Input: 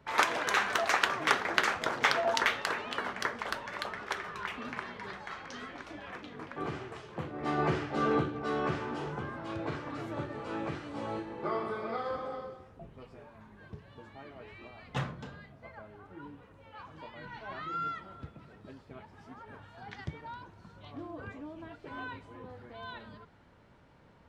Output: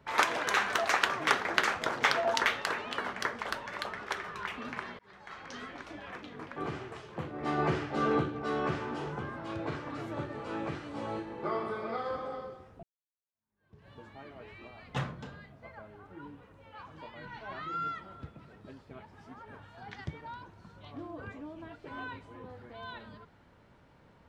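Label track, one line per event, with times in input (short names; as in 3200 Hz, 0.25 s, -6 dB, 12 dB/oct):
4.990000	5.520000	fade in
12.830000	13.870000	fade in exponential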